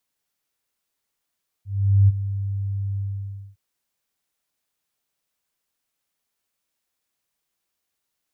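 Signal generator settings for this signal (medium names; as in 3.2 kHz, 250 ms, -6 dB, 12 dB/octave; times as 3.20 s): ADSR sine 99 Hz, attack 433 ms, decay 29 ms, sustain -13 dB, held 1.33 s, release 580 ms -10 dBFS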